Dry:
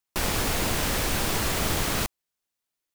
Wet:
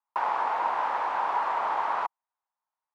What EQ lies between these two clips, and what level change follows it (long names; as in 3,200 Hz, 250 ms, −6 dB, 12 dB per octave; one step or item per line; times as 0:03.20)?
high-pass with resonance 920 Hz, resonance Q 4.9
low-pass filter 1,200 Hz 12 dB per octave
0.0 dB